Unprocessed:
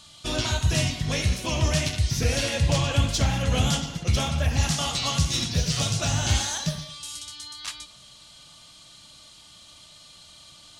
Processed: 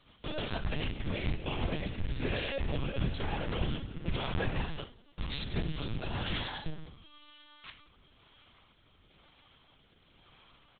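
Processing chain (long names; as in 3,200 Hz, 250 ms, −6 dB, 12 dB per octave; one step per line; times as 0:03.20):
adaptive Wiener filter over 9 samples
mains-hum notches 60/120/180/240/300/360 Hz
0:04.83–0:05.26: noise gate −22 dBFS, range −32 dB
brickwall limiter −18.5 dBFS, peak gain reduction 6.5 dB
log-companded quantiser 4 bits
rotating-speaker cabinet horn 6.7 Hz, later 1 Hz, at 0:00.79
double-tracking delay 45 ms −12.5 dB
on a send: echo with shifted repeats 92 ms, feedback 56%, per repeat +40 Hz, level −17 dB
on the sum: linear-prediction vocoder at 8 kHz pitch kept
level −5 dB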